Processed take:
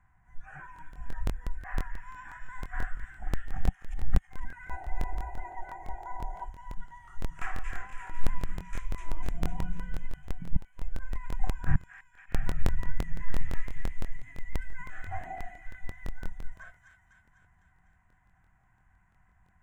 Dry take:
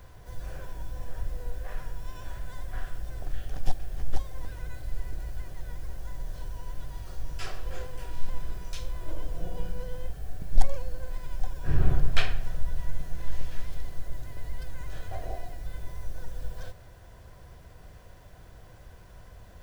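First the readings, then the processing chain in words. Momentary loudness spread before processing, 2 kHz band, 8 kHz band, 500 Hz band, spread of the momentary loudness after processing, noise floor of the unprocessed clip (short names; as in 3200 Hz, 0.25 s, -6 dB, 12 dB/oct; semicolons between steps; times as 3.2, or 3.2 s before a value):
18 LU, +1.5 dB, n/a, -4.0 dB, 14 LU, -50 dBFS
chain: spectral gain 4.69–6.45, 340–1000 Hz +12 dB; notches 50/100/150 Hz; flipped gate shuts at -11 dBFS, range -30 dB; EQ curve 120 Hz 0 dB, 180 Hz +4 dB, 340 Hz -8 dB, 520 Hz -25 dB, 760 Hz +5 dB, 1200 Hz +4 dB, 2000 Hz +8 dB, 4600 Hz -27 dB, 7100 Hz +3 dB; spectral noise reduction 17 dB; air absorption 100 m; thin delay 0.25 s, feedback 61%, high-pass 2200 Hz, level -3 dB; crackling interface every 0.17 s, samples 1024, repeat, from 0.74; gain +1 dB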